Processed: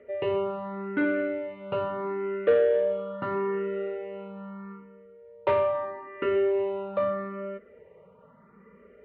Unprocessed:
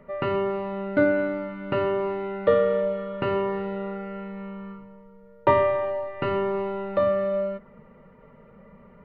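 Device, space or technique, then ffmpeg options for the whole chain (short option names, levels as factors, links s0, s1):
barber-pole phaser into a guitar amplifier: -filter_complex "[0:a]asplit=2[s0][s1];[s1]afreqshift=0.78[s2];[s0][s2]amix=inputs=2:normalize=1,asoftclip=type=tanh:threshold=0.133,highpass=91,equalizer=f=140:t=q:w=4:g=-10,equalizer=f=230:t=q:w=4:g=-4,equalizer=f=430:t=q:w=4:g=7,equalizer=f=810:t=q:w=4:g=-4,lowpass=f=3600:w=0.5412,lowpass=f=3600:w=1.3066"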